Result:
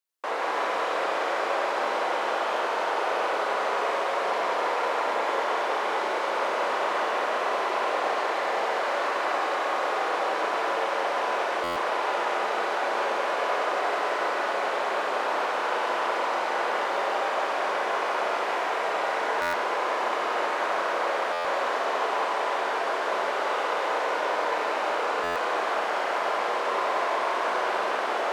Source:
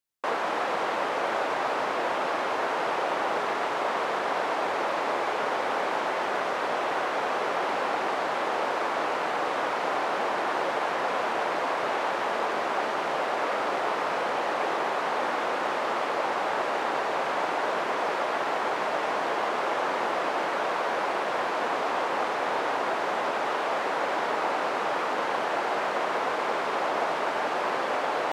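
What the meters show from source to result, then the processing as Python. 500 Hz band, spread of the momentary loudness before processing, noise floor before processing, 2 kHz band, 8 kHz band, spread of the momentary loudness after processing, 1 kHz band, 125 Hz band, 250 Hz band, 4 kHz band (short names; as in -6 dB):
+1.0 dB, 0 LU, -29 dBFS, +1.5 dB, +1.5 dB, 1 LU, +1.0 dB, n/a, -3.0 dB, +1.5 dB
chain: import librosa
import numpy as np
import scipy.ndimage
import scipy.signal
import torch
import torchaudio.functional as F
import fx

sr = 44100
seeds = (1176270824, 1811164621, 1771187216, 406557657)

y = scipy.signal.sosfilt(scipy.signal.butter(2, 330.0, 'highpass', fs=sr, output='sos'), x)
y = fx.rider(y, sr, range_db=10, speed_s=0.5)
y = y + 10.0 ** (-5.0 / 20.0) * np.pad(y, (int(184 * sr / 1000.0), 0))[:len(y)]
y = fx.rev_schroeder(y, sr, rt60_s=3.7, comb_ms=31, drr_db=-3.0)
y = fx.buffer_glitch(y, sr, at_s=(11.63, 19.41, 21.32, 25.23), block=512, repeats=10)
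y = y * librosa.db_to_amplitude(-4.5)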